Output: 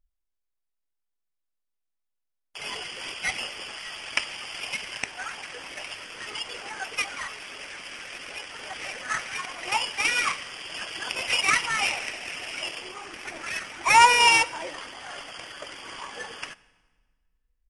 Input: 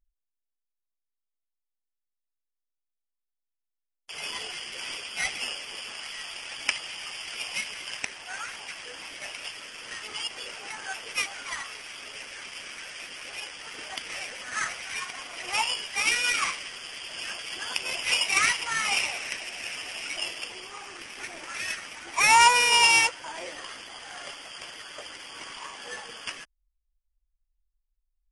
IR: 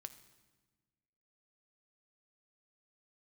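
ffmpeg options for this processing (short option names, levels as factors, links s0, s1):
-filter_complex "[0:a]highshelf=f=2500:g=-6,atempo=1.6,asplit=2[s0][s1];[1:a]atrim=start_sample=2205,asetrate=37044,aresample=44100[s2];[s1][s2]afir=irnorm=-1:irlink=0,volume=1.26[s3];[s0][s3]amix=inputs=2:normalize=0"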